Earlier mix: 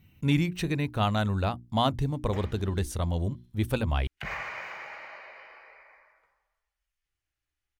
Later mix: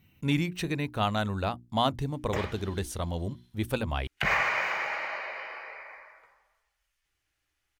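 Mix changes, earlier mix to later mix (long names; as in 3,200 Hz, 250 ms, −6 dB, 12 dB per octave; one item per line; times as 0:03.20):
background +10.0 dB
master: add low-shelf EQ 150 Hz −7.5 dB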